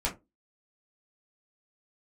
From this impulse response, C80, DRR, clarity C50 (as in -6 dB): 23.5 dB, -5.0 dB, 14.0 dB